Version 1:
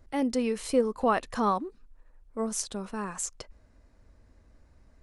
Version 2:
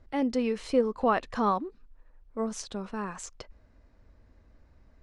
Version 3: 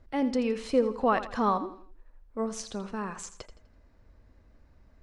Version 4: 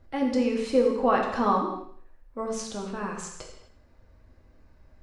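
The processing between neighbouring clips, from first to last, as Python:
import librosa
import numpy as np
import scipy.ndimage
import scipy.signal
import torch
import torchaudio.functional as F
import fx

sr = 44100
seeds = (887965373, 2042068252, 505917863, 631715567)

y1 = scipy.signal.sosfilt(scipy.signal.butter(2, 4800.0, 'lowpass', fs=sr, output='sos'), x)
y2 = fx.echo_feedback(y1, sr, ms=83, feedback_pct=38, wet_db=-13)
y3 = fx.rev_gated(y2, sr, seeds[0], gate_ms=290, shape='falling', drr_db=0.0)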